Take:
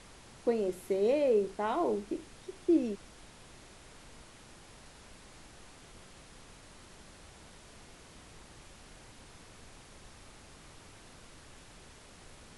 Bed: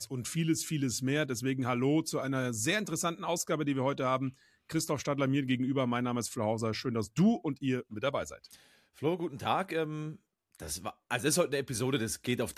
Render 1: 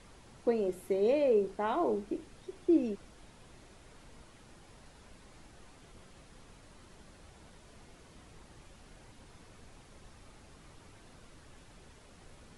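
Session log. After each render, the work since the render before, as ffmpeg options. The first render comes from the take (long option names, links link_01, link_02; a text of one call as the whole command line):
ffmpeg -i in.wav -af "afftdn=noise_reduction=6:noise_floor=-55" out.wav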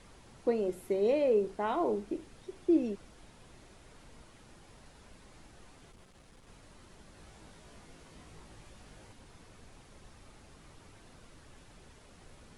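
ffmpeg -i in.wav -filter_complex "[0:a]asettb=1/sr,asplit=3[link_01][link_02][link_03];[link_01]atrim=end=5.914[link_04];[link_02]atrim=start=5.91:end=6.47,asetpts=PTS-STARTPTS,afade=type=in:duration=0.004:curve=qsin,afade=type=out:start_time=0.556:duration=0.004:curve=qsin,aeval=exprs='(tanh(355*val(0)+0.4)-tanh(0.4))/355':channel_layout=same[link_05];[link_03]atrim=start=6.466[link_06];[link_04][link_05]acrossfade=duration=0.004:curve1=hsin:curve2=qsin[link_07];[link_07][link_06]acrossfade=duration=0.004:curve1=qsin:curve2=hsin,asettb=1/sr,asplit=3[link_08][link_09][link_10];[link_08]atrim=end=7.154[link_11];[link_09]atrim=start=7.15:end=9.13,asetpts=PTS-STARTPTS,afade=type=in:duration=0.004:curve=qsin,afade=type=out:start_time=1.976:duration=0.004:curve=qsin,asplit=2[link_12][link_13];[link_13]adelay=19,volume=-3dB[link_14];[link_12][link_14]amix=inputs=2:normalize=0,atrim=end_sample=87318[link_15];[link_10]atrim=start=9.126[link_16];[link_11][link_15]acrossfade=duration=0.004:curve1=hsin:curve2=qsin[link_17];[link_17][link_16]acrossfade=duration=0.004:curve1=qsin:curve2=hsin" out.wav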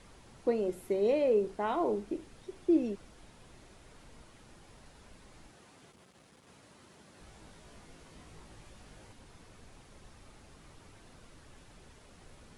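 ffmpeg -i in.wav -filter_complex "[0:a]asettb=1/sr,asplit=3[link_01][link_02][link_03];[link_01]atrim=end=5.504[link_04];[link_02]atrim=start=5.5:end=7.21,asetpts=PTS-STARTPTS,afade=type=in:duration=0.004:curve=qsin,afade=type=out:start_time=1.706:duration=0.004:curve=qsin,highpass=120[link_05];[link_03]atrim=start=7.206[link_06];[link_04][link_05]acrossfade=duration=0.004:curve1=hsin:curve2=qsin[link_07];[link_07][link_06]acrossfade=duration=0.004:curve1=qsin:curve2=hsin" out.wav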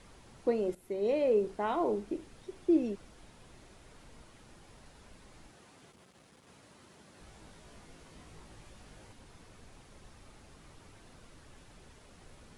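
ffmpeg -i in.wav -filter_complex "[0:a]asplit=2[link_01][link_02];[link_01]atrim=end=0.75,asetpts=PTS-STARTPTS,afade=type=out:start_time=0.746:duration=0.004:curve=hsin:silence=0.223872[link_03];[link_02]atrim=start=0.75,asetpts=PTS-STARTPTS,afade=type=in:duration=0.66:curve=qsin:silence=0.223872[link_04];[link_03][link_04]concat=n=2:v=0:a=1" out.wav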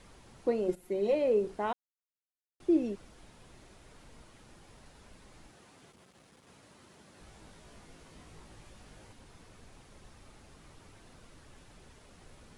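ffmpeg -i in.wav -filter_complex "[0:a]asettb=1/sr,asplit=3[link_01][link_02][link_03];[link_01]atrim=end=0.684[link_04];[link_02]atrim=start=0.68:end=1.15,asetpts=PTS-STARTPTS,afade=type=in:duration=0.004:curve=qsin,afade=type=out:start_time=0.466:duration=0.004:curve=qsin,aecho=1:1:5.6:0.7,atrim=end_sample=20727[link_05];[link_03]atrim=start=1.146[link_06];[link_04][link_05]acrossfade=duration=0.004:curve1=hsin:curve2=qsin[link_07];[link_07][link_06]acrossfade=duration=0.004:curve1=qsin:curve2=hsin,asplit=3[link_08][link_09][link_10];[link_08]atrim=end=1.73,asetpts=PTS-STARTPTS,afade=type=out:start_time=1.726:duration=0.004:curve=hsin[link_11];[link_09]atrim=start=1.73:end=2.6,asetpts=PTS-STARTPTS,volume=0[link_12];[link_10]atrim=start=2.6,asetpts=PTS-STARTPTS,afade=type=in:duration=0.004:curve=hsin[link_13];[link_11][link_12][link_13]concat=n=3:v=0:a=1" out.wav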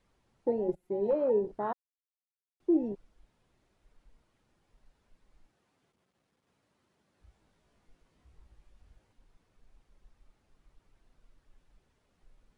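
ffmpeg -i in.wav -af "highshelf=frequency=6100:gain=-7,afwtdn=0.0178" out.wav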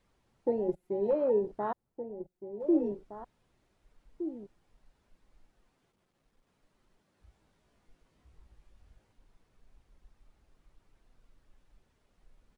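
ffmpeg -i in.wav -filter_complex "[0:a]asplit=2[link_01][link_02];[link_02]adelay=1516,volume=-10dB,highshelf=frequency=4000:gain=-34.1[link_03];[link_01][link_03]amix=inputs=2:normalize=0" out.wav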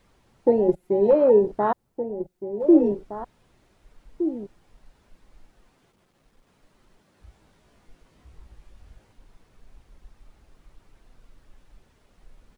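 ffmpeg -i in.wav -af "volume=11dB" out.wav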